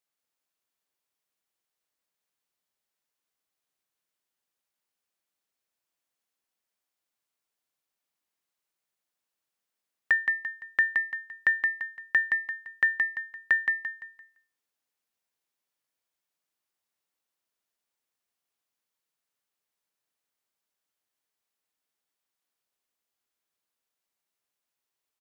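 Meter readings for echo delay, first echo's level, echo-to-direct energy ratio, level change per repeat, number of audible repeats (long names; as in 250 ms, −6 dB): 171 ms, −4.5 dB, −4.0 dB, −9.0 dB, 4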